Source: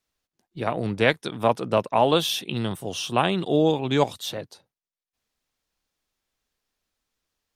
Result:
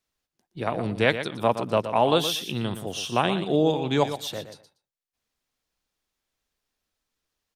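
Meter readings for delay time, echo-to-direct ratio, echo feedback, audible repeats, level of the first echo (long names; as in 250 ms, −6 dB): 119 ms, −10.5 dB, 16%, 2, −10.5 dB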